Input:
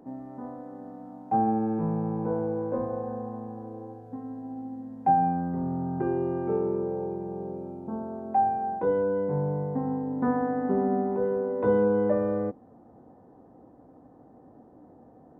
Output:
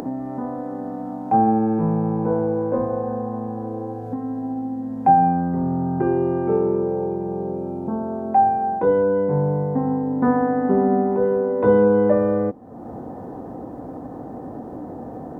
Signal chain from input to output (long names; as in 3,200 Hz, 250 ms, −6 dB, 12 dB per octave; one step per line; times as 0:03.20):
upward compression, threshold −29 dBFS
level +7.5 dB